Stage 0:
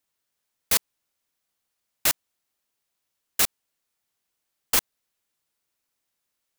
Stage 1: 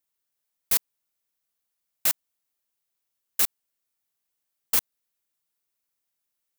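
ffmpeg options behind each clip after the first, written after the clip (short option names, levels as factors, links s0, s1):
-af "highshelf=f=10000:g=8.5,volume=0.473"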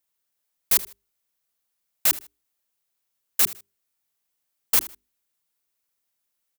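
-af "bandreject=f=50:t=h:w=6,bandreject=f=100:t=h:w=6,bandreject=f=150:t=h:w=6,bandreject=f=200:t=h:w=6,bandreject=f=250:t=h:w=6,bandreject=f=300:t=h:w=6,bandreject=f=350:t=h:w=6,bandreject=f=400:t=h:w=6,aecho=1:1:78|156:0.133|0.036,volume=1.41"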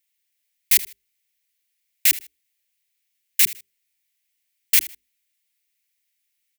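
-af "highshelf=f=1600:t=q:w=3:g=9.5,volume=0.473"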